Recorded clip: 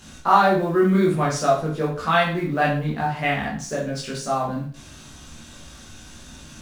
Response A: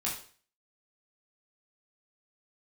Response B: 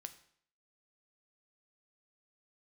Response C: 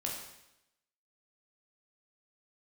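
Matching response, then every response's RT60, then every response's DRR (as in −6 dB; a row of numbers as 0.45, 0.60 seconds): A; 0.45, 0.60, 0.85 seconds; −5.5, 9.0, −2.5 decibels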